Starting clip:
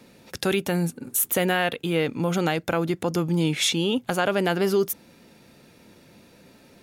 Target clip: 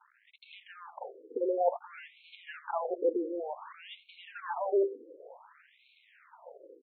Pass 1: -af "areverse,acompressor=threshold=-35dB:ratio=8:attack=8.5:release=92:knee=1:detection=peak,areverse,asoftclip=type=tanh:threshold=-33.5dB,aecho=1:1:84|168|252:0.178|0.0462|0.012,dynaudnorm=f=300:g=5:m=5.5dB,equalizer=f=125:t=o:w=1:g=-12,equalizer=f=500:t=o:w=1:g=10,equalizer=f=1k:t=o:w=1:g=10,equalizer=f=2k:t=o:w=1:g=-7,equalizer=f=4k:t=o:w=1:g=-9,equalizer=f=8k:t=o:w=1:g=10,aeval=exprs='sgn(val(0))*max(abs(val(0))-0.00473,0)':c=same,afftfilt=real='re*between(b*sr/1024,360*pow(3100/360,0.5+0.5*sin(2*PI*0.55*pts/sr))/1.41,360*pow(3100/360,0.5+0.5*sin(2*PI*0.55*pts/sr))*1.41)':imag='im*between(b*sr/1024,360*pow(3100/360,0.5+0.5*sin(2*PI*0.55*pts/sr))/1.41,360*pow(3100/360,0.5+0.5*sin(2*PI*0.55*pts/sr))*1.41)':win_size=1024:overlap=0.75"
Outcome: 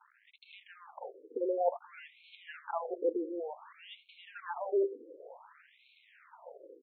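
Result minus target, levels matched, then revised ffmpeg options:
compressor: peak gain reduction +5.5 dB
-af "areverse,acompressor=threshold=-28.5dB:ratio=8:attack=8.5:release=92:knee=1:detection=peak,areverse,asoftclip=type=tanh:threshold=-33.5dB,aecho=1:1:84|168|252:0.178|0.0462|0.012,dynaudnorm=f=300:g=5:m=5.5dB,equalizer=f=125:t=o:w=1:g=-12,equalizer=f=500:t=o:w=1:g=10,equalizer=f=1k:t=o:w=1:g=10,equalizer=f=2k:t=o:w=1:g=-7,equalizer=f=4k:t=o:w=1:g=-9,equalizer=f=8k:t=o:w=1:g=10,aeval=exprs='sgn(val(0))*max(abs(val(0))-0.00473,0)':c=same,afftfilt=real='re*between(b*sr/1024,360*pow(3100/360,0.5+0.5*sin(2*PI*0.55*pts/sr))/1.41,360*pow(3100/360,0.5+0.5*sin(2*PI*0.55*pts/sr))*1.41)':imag='im*between(b*sr/1024,360*pow(3100/360,0.5+0.5*sin(2*PI*0.55*pts/sr))/1.41,360*pow(3100/360,0.5+0.5*sin(2*PI*0.55*pts/sr))*1.41)':win_size=1024:overlap=0.75"

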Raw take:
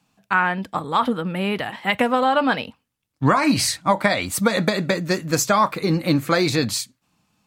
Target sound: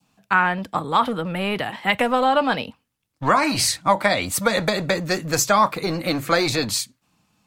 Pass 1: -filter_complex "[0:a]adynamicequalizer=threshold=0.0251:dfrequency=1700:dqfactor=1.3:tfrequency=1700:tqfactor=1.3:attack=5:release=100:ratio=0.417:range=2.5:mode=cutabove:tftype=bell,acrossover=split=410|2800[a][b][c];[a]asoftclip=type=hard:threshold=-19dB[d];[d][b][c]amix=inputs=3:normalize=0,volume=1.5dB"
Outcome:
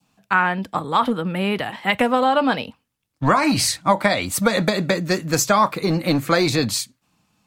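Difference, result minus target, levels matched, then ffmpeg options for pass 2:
hard clip: distortion -8 dB
-filter_complex "[0:a]adynamicequalizer=threshold=0.0251:dfrequency=1700:dqfactor=1.3:tfrequency=1700:tqfactor=1.3:attack=5:release=100:ratio=0.417:range=2.5:mode=cutabove:tftype=bell,acrossover=split=410|2800[a][b][c];[a]asoftclip=type=hard:threshold=-28dB[d];[d][b][c]amix=inputs=3:normalize=0,volume=1.5dB"

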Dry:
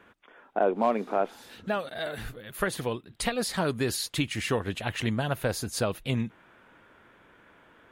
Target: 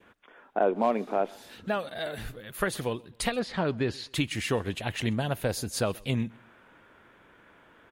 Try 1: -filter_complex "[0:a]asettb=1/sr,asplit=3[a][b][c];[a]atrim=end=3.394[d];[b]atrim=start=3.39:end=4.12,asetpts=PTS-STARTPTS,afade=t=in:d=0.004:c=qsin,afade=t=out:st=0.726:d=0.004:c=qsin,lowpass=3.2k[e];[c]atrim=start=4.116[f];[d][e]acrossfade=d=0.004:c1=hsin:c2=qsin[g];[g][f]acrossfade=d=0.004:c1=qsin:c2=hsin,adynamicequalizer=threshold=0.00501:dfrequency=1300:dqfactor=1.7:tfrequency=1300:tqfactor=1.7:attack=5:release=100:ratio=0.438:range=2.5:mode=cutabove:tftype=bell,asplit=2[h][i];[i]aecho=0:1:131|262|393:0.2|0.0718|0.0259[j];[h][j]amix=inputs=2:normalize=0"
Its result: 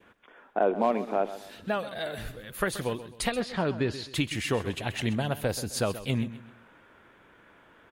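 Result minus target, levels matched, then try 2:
echo-to-direct +11.5 dB
-filter_complex "[0:a]asettb=1/sr,asplit=3[a][b][c];[a]atrim=end=3.394[d];[b]atrim=start=3.39:end=4.12,asetpts=PTS-STARTPTS,afade=t=in:d=0.004:c=qsin,afade=t=out:st=0.726:d=0.004:c=qsin,lowpass=3.2k[e];[c]atrim=start=4.116[f];[d][e]acrossfade=d=0.004:c1=hsin:c2=qsin[g];[g][f]acrossfade=d=0.004:c1=qsin:c2=hsin,adynamicequalizer=threshold=0.00501:dfrequency=1300:dqfactor=1.7:tfrequency=1300:tqfactor=1.7:attack=5:release=100:ratio=0.438:range=2.5:mode=cutabove:tftype=bell,asplit=2[h][i];[i]aecho=0:1:131|262:0.0531|0.0191[j];[h][j]amix=inputs=2:normalize=0"

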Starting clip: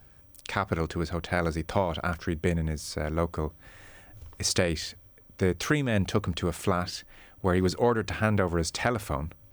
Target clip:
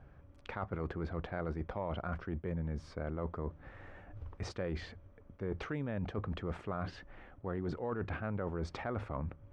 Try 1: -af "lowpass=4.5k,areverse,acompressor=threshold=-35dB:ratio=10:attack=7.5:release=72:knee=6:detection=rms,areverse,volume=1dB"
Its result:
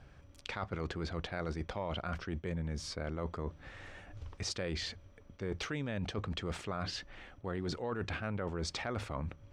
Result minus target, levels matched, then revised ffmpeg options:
4000 Hz band +12.0 dB
-af "lowpass=1.5k,areverse,acompressor=threshold=-35dB:ratio=10:attack=7.5:release=72:knee=6:detection=rms,areverse,volume=1dB"

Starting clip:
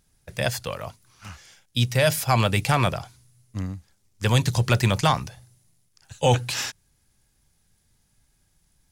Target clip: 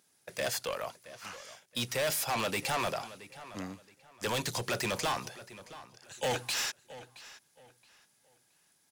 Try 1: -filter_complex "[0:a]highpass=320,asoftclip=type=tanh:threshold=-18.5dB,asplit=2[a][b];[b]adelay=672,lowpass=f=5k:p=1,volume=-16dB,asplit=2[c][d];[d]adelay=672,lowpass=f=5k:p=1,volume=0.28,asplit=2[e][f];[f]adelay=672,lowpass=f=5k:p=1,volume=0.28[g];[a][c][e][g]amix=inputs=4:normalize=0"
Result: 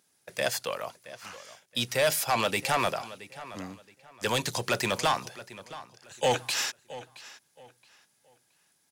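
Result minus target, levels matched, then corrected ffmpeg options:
soft clip: distortion -7 dB
-filter_complex "[0:a]highpass=320,asoftclip=type=tanh:threshold=-28dB,asplit=2[a][b];[b]adelay=672,lowpass=f=5k:p=1,volume=-16dB,asplit=2[c][d];[d]adelay=672,lowpass=f=5k:p=1,volume=0.28,asplit=2[e][f];[f]adelay=672,lowpass=f=5k:p=1,volume=0.28[g];[a][c][e][g]amix=inputs=4:normalize=0"

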